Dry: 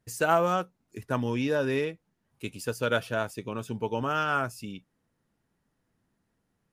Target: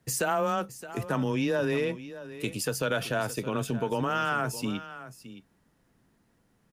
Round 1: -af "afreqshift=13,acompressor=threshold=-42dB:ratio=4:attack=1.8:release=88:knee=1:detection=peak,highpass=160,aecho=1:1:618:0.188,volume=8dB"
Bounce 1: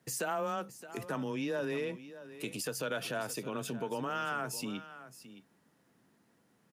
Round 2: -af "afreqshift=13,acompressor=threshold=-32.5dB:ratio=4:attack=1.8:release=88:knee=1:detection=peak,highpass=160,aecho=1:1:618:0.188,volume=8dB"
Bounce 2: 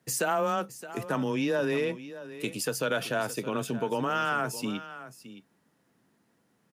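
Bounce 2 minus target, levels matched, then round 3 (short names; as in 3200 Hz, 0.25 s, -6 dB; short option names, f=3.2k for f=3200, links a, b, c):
125 Hz band -4.0 dB
-af "afreqshift=13,acompressor=threshold=-32.5dB:ratio=4:attack=1.8:release=88:knee=1:detection=peak,aecho=1:1:618:0.188,volume=8dB"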